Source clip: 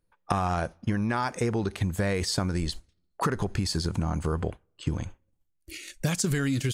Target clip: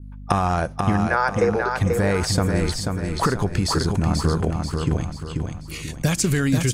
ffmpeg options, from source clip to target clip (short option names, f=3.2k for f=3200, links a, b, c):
-filter_complex "[0:a]asettb=1/sr,asplit=3[a][b][c];[a]atrim=end=1.074[d];[b]atrim=start=1.07:end=1.77,asetpts=PTS-STARTPTS,afade=t=in:d=0.004:c=qsin,afade=t=out:st=0.696:d=0.004:c=qsin,highpass=f=430:w=0.5412,highpass=f=430:w=1.3066,equalizer=f=500:t=q:w=4:g=10,equalizer=f=1.5k:t=q:w=4:g=7,equalizer=f=3.2k:t=q:w=4:g=-9,lowpass=f=6.3k:w=0.5412,lowpass=f=6.3k:w=1.3066[e];[c]atrim=start=1.766[f];[d][e]acrossfade=d=0.004:c1=hsin:c2=qsin[g];[g][f]acrossfade=d=0.004:c1=qsin:c2=hsin,aeval=exprs='val(0)+0.00794*(sin(2*PI*50*n/s)+sin(2*PI*2*50*n/s)/2+sin(2*PI*3*50*n/s)/3+sin(2*PI*4*50*n/s)/4+sin(2*PI*5*50*n/s)/5)':c=same,asplit=2[h][i];[i]aecho=0:1:487|974|1461|1948|2435:0.596|0.244|0.1|0.0411|0.0168[j];[h][j]amix=inputs=2:normalize=0,adynamicequalizer=threshold=0.00562:dfrequency=3700:dqfactor=0.97:tfrequency=3700:tqfactor=0.97:attack=5:release=100:ratio=0.375:range=2:mode=cutabove:tftype=bell,volume=6dB"